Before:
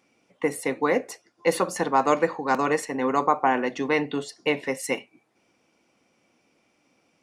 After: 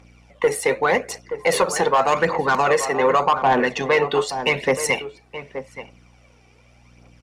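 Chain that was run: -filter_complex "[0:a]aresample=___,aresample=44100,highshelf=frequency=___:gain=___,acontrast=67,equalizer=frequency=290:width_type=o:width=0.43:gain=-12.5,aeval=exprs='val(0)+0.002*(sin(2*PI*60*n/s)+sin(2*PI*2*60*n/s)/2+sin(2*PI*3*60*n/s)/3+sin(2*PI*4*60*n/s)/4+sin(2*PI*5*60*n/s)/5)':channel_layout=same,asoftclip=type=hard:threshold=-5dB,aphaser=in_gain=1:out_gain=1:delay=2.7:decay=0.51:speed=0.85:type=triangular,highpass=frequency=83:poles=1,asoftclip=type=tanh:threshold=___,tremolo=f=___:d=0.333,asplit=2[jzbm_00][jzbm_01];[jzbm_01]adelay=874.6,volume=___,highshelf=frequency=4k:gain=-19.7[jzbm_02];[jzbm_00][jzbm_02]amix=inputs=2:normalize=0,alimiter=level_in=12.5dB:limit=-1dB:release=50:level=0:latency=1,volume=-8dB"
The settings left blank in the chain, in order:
32000, 10k, -8, -8dB, 100, -13dB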